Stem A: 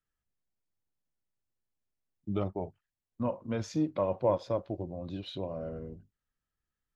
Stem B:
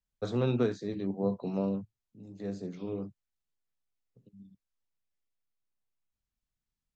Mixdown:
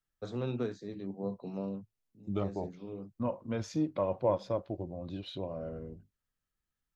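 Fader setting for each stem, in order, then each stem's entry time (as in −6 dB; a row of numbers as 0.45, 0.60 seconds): −1.5, −6.5 decibels; 0.00, 0.00 seconds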